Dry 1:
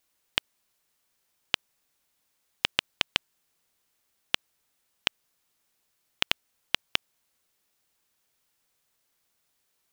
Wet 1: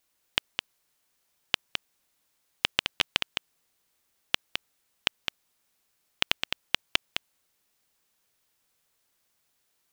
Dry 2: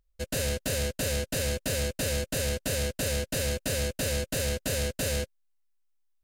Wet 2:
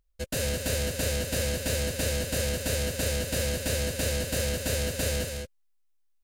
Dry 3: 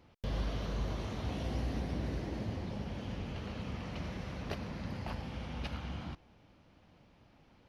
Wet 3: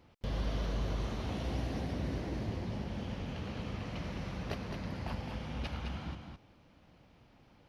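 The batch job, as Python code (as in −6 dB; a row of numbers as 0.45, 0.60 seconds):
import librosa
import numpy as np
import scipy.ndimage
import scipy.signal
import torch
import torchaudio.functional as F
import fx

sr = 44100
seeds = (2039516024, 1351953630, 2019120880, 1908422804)

y = x + 10.0 ** (-6.0 / 20.0) * np.pad(x, (int(211 * sr / 1000.0), 0))[:len(x)]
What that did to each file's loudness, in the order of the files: −0.5, +1.0, +1.0 LU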